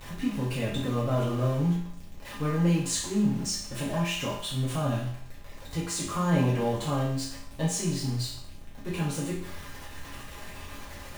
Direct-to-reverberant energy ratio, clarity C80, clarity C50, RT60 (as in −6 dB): −8.0 dB, 7.5 dB, 4.0 dB, 0.60 s